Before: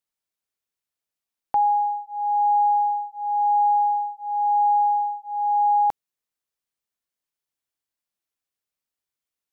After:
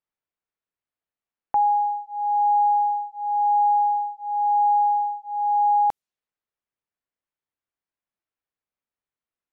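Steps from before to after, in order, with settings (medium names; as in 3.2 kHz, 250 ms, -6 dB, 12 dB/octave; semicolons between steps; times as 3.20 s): level-controlled noise filter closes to 2.2 kHz, open at -21 dBFS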